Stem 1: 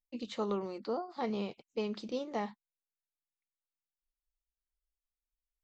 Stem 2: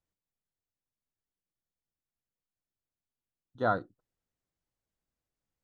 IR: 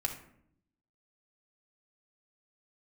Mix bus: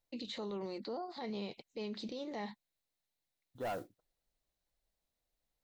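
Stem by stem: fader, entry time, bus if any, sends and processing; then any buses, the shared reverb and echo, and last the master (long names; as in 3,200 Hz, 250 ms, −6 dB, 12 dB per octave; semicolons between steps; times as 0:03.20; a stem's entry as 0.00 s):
+3.0 dB, 0.00 s, no send, thirty-one-band graphic EQ 1,250 Hz −7 dB, 2,000 Hz +5 dB, 4,000 Hz +9 dB; downward compressor, threshold −35 dBFS, peak gain reduction 5.5 dB
−3.5 dB, 0.00 s, no send, parametric band 650 Hz +8.5 dB 1 octave; noise that follows the level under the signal 23 dB; soft clipping −23.5 dBFS, distortion −8 dB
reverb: not used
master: brickwall limiter −34 dBFS, peak gain reduction 10 dB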